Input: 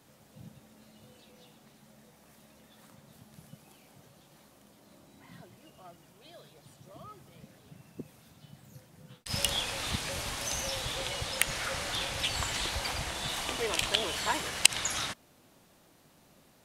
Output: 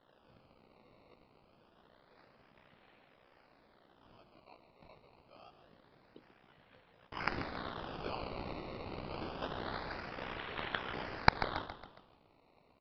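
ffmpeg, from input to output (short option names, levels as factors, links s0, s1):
-filter_complex "[0:a]bass=f=250:g=-14,treble=f=4000:g=2,bandreject=f=50:t=h:w=6,bandreject=f=100:t=h:w=6,bandreject=f=150:t=h:w=6,bandreject=f=200:t=h:w=6,bandreject=f=250:t=h:w=6,bandreject=f=300:t=h:w=6,bandreject=f=350:t=h:w=6,bandreject=f=400:t=h:w=6,acrossover=split=150|3000[s0][s1][s2];[s1]acompressor=threshold=0.00251:ratio=2[s3];[s0][s3][s2]amix=inputs=3:normalize=0,tremolo=f=61:d=0.947,flanger=delay=19:depth=6.8:speed=1.2,atempo=1.3,acrusher=samples=18:mix=1:aa=0.000001:lfo=1:lforange=18:lforate=0.26,asplit=2[s4][s5];[s5]asplit=5[s6][s7][s8][s9][s10];[s6]adelay=138,afreqshift=-49,volume=0.282[s11];[s7]adelay=276,afreqshift=-98,volume=0.138[s12];[s8]adelay=414,afreqshift=-147,volume=0.0676[s13];[s9]adelay=552,afreqshift=-196,volume=0.0331[s14];[s10]adelay=690,afreqshift=-245,volume=0.0162[s15];[s11][s12][s13][s14][s15]amix=inputs=5:normalize=0[s16];[s4][s16]amix=inputs=2:normalize=0,aresample=11025,aresample=44100,volume=1.26"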